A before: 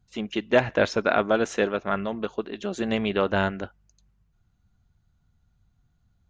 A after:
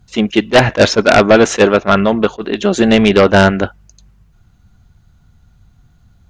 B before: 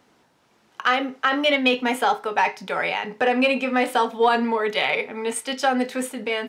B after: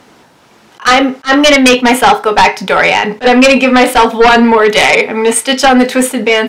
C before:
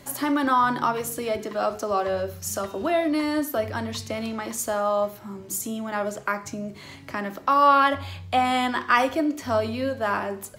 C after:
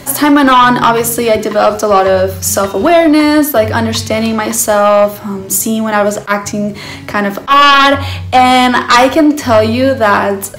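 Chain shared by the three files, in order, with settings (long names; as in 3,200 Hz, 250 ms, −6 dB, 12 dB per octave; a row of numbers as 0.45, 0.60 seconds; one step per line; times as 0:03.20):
sine wavefolder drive 9 dB, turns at −6 dBFS
level that may rise only so fast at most 440 dB per second
normalise the peak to −1.5 dBFS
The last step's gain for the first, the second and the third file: +4.5, +4.5, +4.5 decibels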